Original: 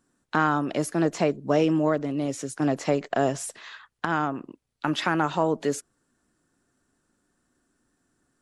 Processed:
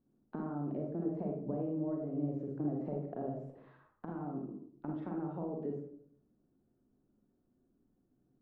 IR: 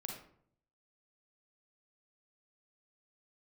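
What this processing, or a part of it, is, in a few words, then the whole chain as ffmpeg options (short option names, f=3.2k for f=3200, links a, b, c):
television next door: -filter_complex "[0:a]acompressor=threshold=-31dB:ratio=4,lowpass=490[a];[1:a]atrim=start_sample=2205[b];[a][b]afir=irnorm=-1:irlink=0"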